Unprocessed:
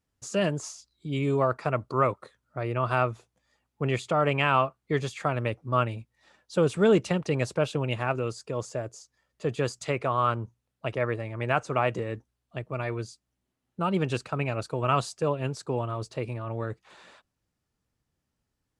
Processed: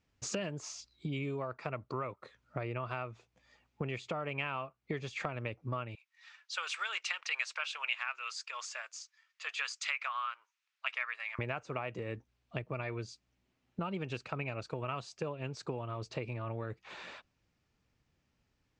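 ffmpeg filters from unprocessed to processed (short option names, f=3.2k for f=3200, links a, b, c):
-filter_complex "[0:a]asettb=1/sr,asplit=3[a][b][c];[a]atrim=end=5.954[d];[b]atrim=start=5.95:end=11.39,asetpts=PTS-STARTPTS,afade=t=in:d=0.004:c=qsin,afade=t=out:st=5.436:d=0.004:c=qsin,highpass=f=1.2k:w=0.5412,highpass=f=1.2k:w=1.3066[e];[c]atrim=start=11.386[f];[d][e]acrossfade=d=0.004:c1=hsin:c2=qsin[g];[g][f]acrossfade=d=0.004:c1=qsin:c2=hsin,lowpass=f=6.6k:w=0.5412,lowpass=f=6.6k:w=1.3066,acompressor=threshold=-38dB:ratio=12,equalizer=f=2.4k:t=o:w=0.55:g=6,volume=3.5dB"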